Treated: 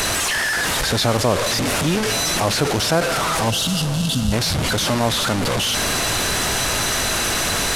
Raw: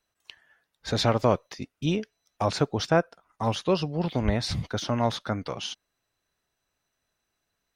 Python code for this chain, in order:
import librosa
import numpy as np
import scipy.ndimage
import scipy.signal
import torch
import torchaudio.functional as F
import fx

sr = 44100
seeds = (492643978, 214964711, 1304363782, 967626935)

p1 = fx.delta_mod(x, sr, bps=64000, step_db=-22.5)
p2 = fx.spec_erase(p1, sr, start_s=3.5, length_s=0.82, low_hz=290.0, high_hz=2600.0)
p3 = p2 + fx.echo_diffused(p2, sr, ms=466, feedback_pct=62, wet_db=-14.5, dry=0)
p4 = fx.env_flatten(p3, sr, amount_pct=50)
y = F.gain(torch.from_numpy(p4), 2.5).numpy()